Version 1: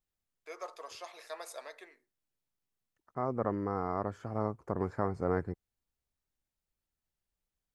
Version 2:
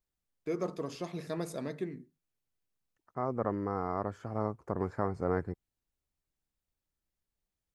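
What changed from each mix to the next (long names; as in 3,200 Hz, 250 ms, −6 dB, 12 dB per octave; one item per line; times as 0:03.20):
first voice: remove high-pass filter 650 Hz 24 dB per octave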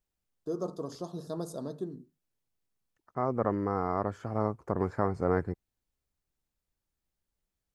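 first voice: add Butterworth band-reject 2,200 Hz, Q 0.84
second voice +3.5 dB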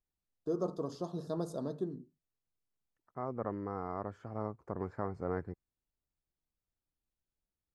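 second voice −8.5 dB
master: add low-pass filter 3,900 Hz 6 dB per octave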